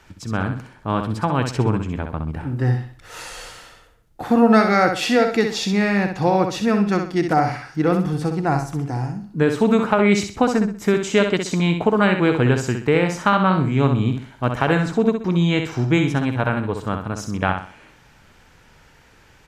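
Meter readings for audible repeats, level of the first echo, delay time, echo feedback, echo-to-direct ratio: 3, −6.5 dB, 64 ms, 33%, −6.0 dB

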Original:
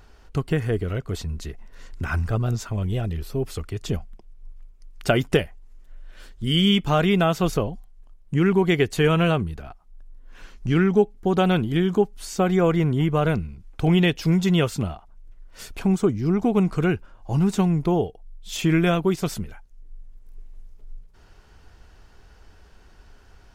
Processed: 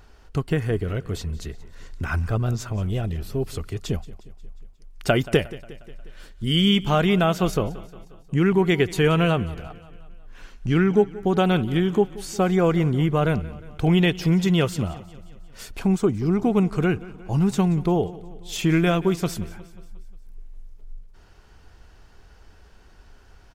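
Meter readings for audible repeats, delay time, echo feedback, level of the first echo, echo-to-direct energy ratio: 4, 179 ms, 57%, −19.0 dB, −17.5 dB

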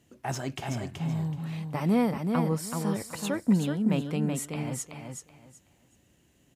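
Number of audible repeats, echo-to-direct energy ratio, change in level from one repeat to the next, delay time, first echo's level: 3, −5.0 dB, −13.0 dB, 377 ms, −5.0 dB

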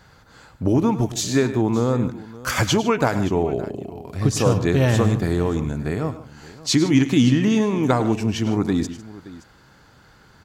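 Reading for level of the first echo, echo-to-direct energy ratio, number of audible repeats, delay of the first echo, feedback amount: −14.0 dB, −11.0 dB, 3, 104 ms, repeats not evenly spaced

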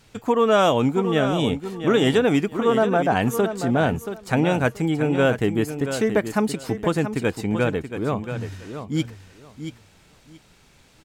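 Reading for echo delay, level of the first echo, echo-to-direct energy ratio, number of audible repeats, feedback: 679 ms, −9.5 dB, −9.5 dB, 2, 19%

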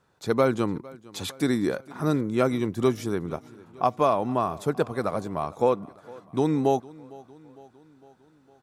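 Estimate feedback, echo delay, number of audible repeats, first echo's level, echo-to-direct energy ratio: 58%, 456 ms, 3, −22.0 dB, −20.5 dB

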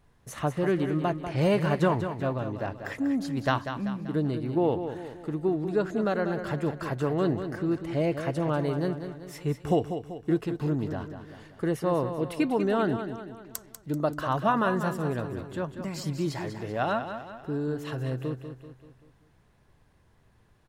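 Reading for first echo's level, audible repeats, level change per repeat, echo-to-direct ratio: −9.0 dB, 5, −6.5 dB, −8.0 dB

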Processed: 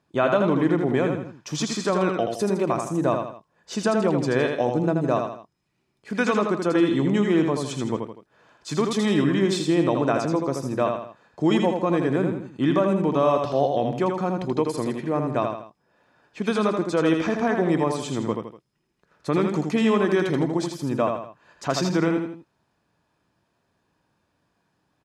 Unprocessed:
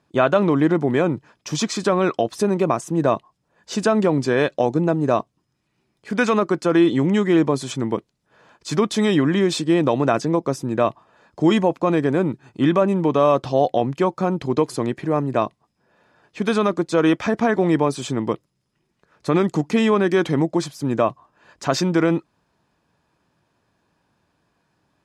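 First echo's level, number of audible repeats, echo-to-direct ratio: −5.0 dB, 3, −4.0 dB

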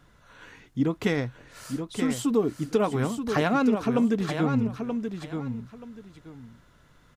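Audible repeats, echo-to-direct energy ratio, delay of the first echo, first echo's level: 2, −7.0 dB, 929 ms, −7.0 dB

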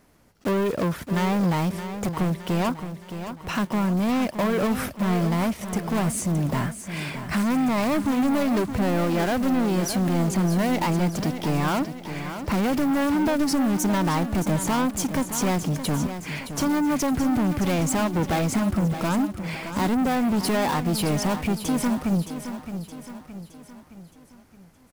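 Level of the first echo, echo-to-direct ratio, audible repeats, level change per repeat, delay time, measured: −10.0 dB, −9.0 dB, 5, −6.0 dB, 618 ms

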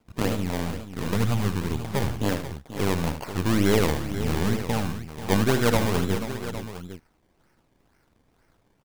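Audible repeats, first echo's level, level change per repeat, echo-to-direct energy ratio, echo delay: 3, −9.5 dB, repeats not evenly spaced, −6.0 dB, 76 ms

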